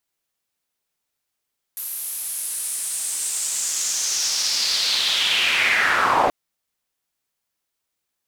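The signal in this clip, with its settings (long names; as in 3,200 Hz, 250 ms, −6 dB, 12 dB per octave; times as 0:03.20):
filter sweep on noise pink, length 4.53 s bandpass, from 12,000 Hz, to 620 Hz, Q 3.6, linear, gain ramp +10.5 dB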